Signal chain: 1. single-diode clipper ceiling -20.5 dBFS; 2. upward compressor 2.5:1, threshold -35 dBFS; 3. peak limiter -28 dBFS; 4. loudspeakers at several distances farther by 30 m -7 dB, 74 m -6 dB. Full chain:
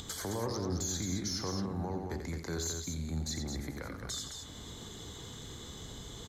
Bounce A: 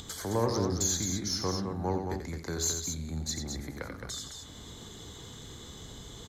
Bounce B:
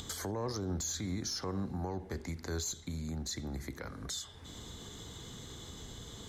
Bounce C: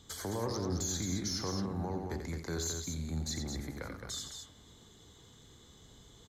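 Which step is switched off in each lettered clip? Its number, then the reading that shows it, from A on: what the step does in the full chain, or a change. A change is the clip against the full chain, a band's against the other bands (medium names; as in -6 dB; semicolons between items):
3, crest factor change +3.5 dB; 4, echo-to-direct -3.5 dB to none; 2, momentary loudness spread change -2 LU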